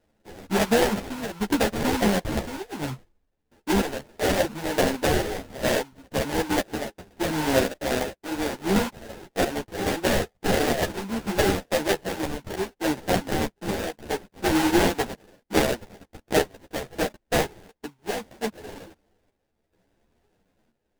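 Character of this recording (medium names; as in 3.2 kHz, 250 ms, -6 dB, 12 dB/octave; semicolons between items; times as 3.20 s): chopped level 0.71 Hz, depth 60%, duty 70%; aliases and images of a low sample rate 1.2 kHz, jitter 20%; a shimmering, thickened sound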